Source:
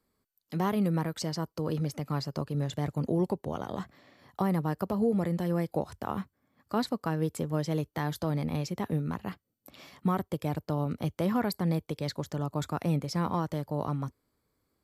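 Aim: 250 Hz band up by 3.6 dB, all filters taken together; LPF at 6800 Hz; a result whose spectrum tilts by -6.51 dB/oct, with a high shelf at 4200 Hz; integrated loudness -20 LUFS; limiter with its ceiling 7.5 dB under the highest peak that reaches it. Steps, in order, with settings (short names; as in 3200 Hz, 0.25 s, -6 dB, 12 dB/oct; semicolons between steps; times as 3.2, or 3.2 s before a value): LPF 6800 Hz; bell 250 Hz +5.5 dB; high shelf 4200 Hz -8.5 dB; gain +12 dB; limiter -9 dBFS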